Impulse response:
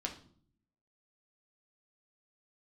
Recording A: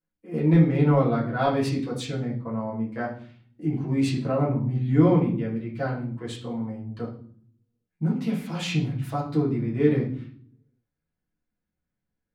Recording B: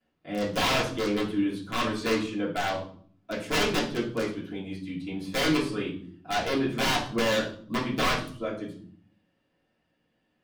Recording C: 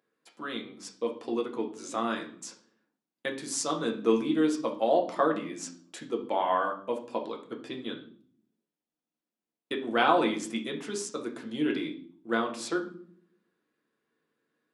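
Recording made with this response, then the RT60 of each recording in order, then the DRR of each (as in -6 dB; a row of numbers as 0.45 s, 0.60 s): C; 0.55 s, 0.55 s, 0.55 s; -6.5 dB, -14.5 dB, 0.5 dB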